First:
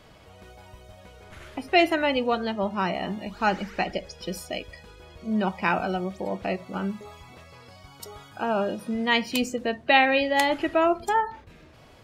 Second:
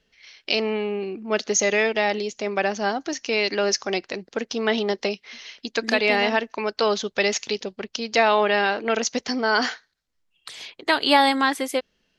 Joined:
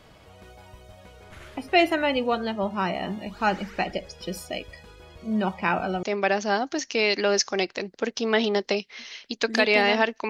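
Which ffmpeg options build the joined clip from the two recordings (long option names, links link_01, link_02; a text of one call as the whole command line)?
ffmpeg -i cue0.wav -i cue1.wav -filter_complex "[0:a]asettb=1/sr,asplit=3[link_01][link_02][link_03];[link_01]atrim=end=5.544[link_04];[link_02]atrim=start=5.54:end=6.03,asetpts=PTS-STARTPTS,afade=type=in:duration=0.004:curve=qsin,afade=type=out:start_time=0.486:duration=0.004:curve=qsin,highshelf=frequency=6700:gain=-8[link_05];[link_03]atrim=start=6.026[link_06];[link_04][link_05]acrossfade=duration=0.004:curve1=hsin:curve2=qsin[link_07];[link_07][link_06]acrossfade=duration=0.004:curve1=qsin:curve2=hsin,apad=whole_dur=10.29,atrim=end=10.29,atrim=end=6.032[link_08];[1:a]atrim=start=2.368:end=6.63[link_09];[link_08][link_09]acrossfade=duration=0.004:curve1=hsin:curve2=hsin" out.wav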